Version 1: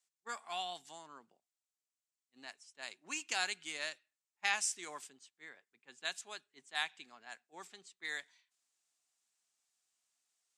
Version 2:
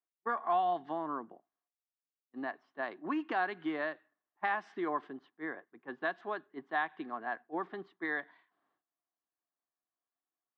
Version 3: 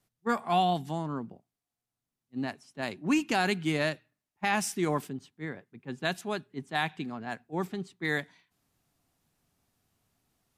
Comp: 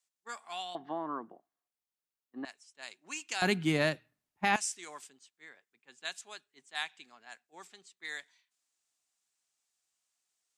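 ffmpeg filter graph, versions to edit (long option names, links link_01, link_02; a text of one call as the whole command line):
ffmpeg -i take0.wav -i take1.wav -i take2.wav -filter_complex "[0:a]asplit=3[link_01][link_02][link_03];[link_01]atrim=end=0.752[link_04];[1:a]atrim=start=0.748:end=2.452[link_05];[link_02]atrim=start=2.448:end=3.422[link_06];[2:a]atrim=start=3.418:end=4.562[link_07];[link_03]atrim=start=4.558[link_08];[link_04][link_05]acrossfade=duration=0.004:curve1=hsin:curve2=hsin[link_09];[link_09][link_06]acrossfade=duration=0.004:curve1=hsin:curve2=hsin[link_10];[link_10][link_07]acrossfade=duration=0.004:curve1=hsin:curve2=hsin[link_11];[link_11][link_08]acrossfade=duration=0.004:curve1=hsin:curve2=hsin" out.wav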